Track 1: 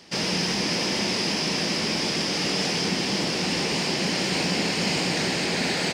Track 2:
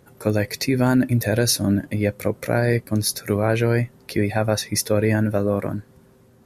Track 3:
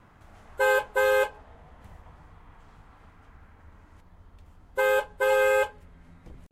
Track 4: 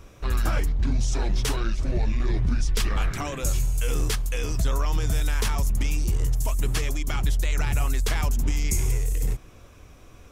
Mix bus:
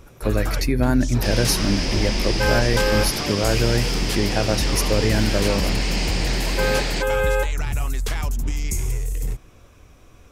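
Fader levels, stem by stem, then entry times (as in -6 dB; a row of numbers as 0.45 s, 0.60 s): -1.5 dB, -2.0 dB, 0.0 dB, -0.5 dB; 1.10 s, 0.00 s, 1.80 s, 0.00 s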